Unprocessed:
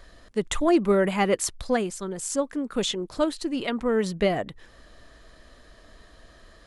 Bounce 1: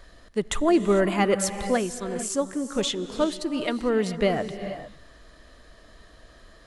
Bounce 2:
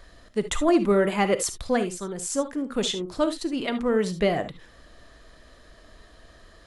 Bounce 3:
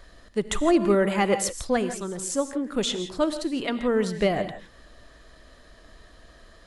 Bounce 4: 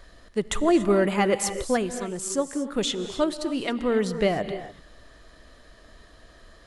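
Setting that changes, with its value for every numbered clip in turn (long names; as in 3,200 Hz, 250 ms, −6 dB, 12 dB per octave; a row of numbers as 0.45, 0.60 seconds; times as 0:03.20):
reverb whose tail is shaped and stops, gate: 480, 90, 190, 310 milliseconds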